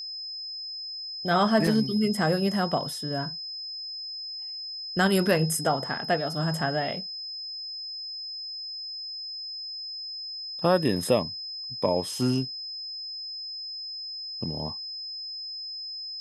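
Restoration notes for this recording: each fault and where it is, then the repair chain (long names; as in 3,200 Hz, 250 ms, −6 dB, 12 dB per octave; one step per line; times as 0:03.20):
whistle 5,100 Hz −34 dBFS
0:01.67: drop-out 2.3 ms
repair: notch filter 5,100 Hz, Q 30
repair the gap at 0:01.67, 2.3 ms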